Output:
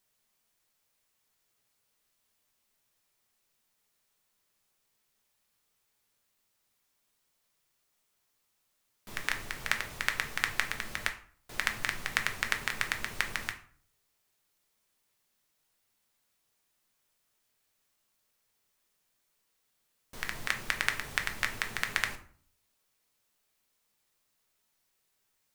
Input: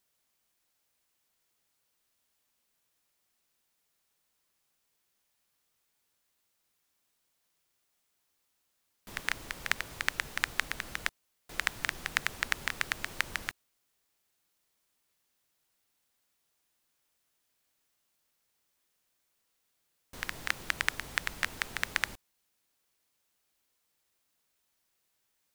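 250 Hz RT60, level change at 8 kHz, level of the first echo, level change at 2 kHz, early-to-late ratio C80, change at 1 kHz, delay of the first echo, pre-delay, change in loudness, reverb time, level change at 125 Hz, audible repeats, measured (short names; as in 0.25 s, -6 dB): 0.60 s, +1.0 dB, none, +1.0 dB, 16.0 dB, +1.5 dB, none, 5 ms, +1.0 dB, 0.50 s, +2.5 dB, none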